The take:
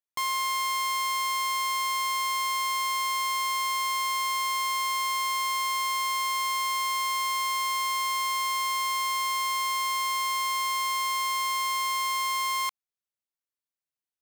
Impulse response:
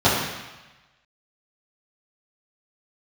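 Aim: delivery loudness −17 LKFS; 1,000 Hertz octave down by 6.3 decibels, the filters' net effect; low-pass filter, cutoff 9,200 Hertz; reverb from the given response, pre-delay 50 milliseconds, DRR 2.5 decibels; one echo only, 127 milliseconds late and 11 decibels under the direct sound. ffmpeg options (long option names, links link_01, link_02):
-filter_complex "[0:a]lowpass=9200,equalizer=frequency=1000:width_type=o:gain=-6.5,aecho=1:1:127:0.282,asplit=2[link_01][link_02];[1:a]atrim=start_sample=2205,adelay=50[link_03];[link_02][link_03]afir=irnorm=-1:irlink=0,volume=-24.5dB[link_04];[link_01][link_04]amix=inputs=2:normalize=0,volume=16dB"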